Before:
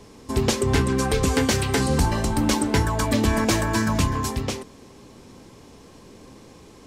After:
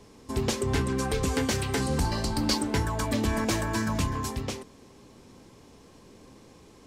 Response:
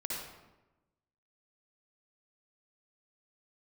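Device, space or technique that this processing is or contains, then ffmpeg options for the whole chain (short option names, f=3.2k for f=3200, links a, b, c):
parallel distortion: -filter_complex "[0:a]asettb=1/sr,asplit=3[a][b][c];[a]atrim=end=2.054[d];[b]atrim=start=2.05:end=2.58,asetpts=PTS-STARTPTS,afade=t=in:d=0.004:c=qsin,afade=t=out:st=0.526:d=0.004:c=qsin,equalizer=f=4.6k:w=4.3:g=14[e];[c]atrim=start=2.576[f];[d][e]acrossfade=d=0.004:c1=hsin:c2=qsin[g];[g][f]acrossfade=d=0.004:c1=qsin:c2=hsin,asplit=2[h][i];[i]asoftclip=type=hard:threshold=-19dB,volume=-13dB[j];[h][j]amix=inputs=2:normalize=0,volume=-7.5dB"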